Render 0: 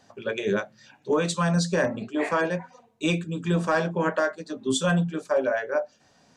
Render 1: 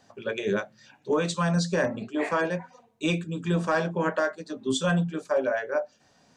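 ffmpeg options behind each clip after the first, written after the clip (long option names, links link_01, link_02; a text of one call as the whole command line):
ffmpeg -i in.wav -filter_complex "[0:a]acrossover=split=8800[link_01][link_02];[link_02]acompressor=threshold=-57dB:ratio=4:attack=1:release=60[link_03];[link_01][link_03]amix=inputs=2:normalize=0,volume=-1.5dB" out.wav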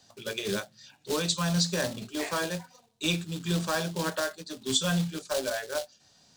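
ffmpeg -i in.wav -filter_complex "[0:a]acrossover=split=150|1600[link_01][link_02][link_03];[link_02]acrusher=bits=3:mode=log:mix=0:aa=0.000001[link_04];[link_01][link_04][link_03]amix=inputs=3:normalize=0,equalizer=frequency=250:width_type=o:width=1:gain=-5,equalizer=frequency=500:width_type=o:width=1:gain=-5,equalizer=frequency=1000:width_type=o:width=1:gain=-4,equalizer=frequency=2000:width_type=o:width=1:gain=-5,equalizer=frequency=4000:width_type=o:width=1:gain=7,equalizer=frequency=8000:width_type=o:width=1:gain=4" out.wav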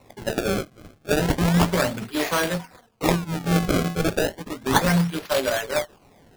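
ffmpeg -i in.wav -af "acrusher=samples=27:mix=1:aa=0.000001:lfo=1:lforange=43.2:lforate=0.33,volume=7.5dB" out.wav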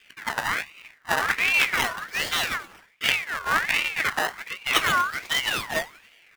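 ffmpeg -i in.wav -filter_complex "[0:a]asplit=5[link_01][link_02][link_03][link_04][link_05];[link_02]adelay=92,afreqshift=-68,volume=-22.5dB[link_06];[link_03]adelay=184,afreqshift=-136,volume=-27.1dB[link_07];[link_04]adelay=276,afreqshift=-204,volume=-31.7dB[link_08];[link_05]adelay=368,afreqshift=-272,volume=-36.2dB[link_09];[link_01][link_06][link_07][link_08][link_09]amix=inputs=5:normalize=0,aeval=exprs='val(0)*sin(2*PI*1900*n/s+1900*0.35/1.3*sin(2*PI*1.3*n/s))':channel_layout=same" out.wav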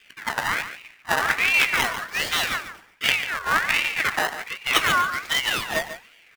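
ffmpeg -i in.wav -af "aecho=1:1:144:0.266,volume=1.5dB" out.wav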